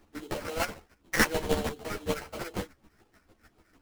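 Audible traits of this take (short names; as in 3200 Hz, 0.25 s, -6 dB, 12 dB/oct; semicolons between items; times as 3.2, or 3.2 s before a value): phasing stages 8, 4 Hz, lowest notch 790–1900 Hz; chopped level 6.7 Hz, depth 65%, duty 25%; aliases and images of a low sample rate 3600 Hz, jitter 20%; a shimmering, thickened sound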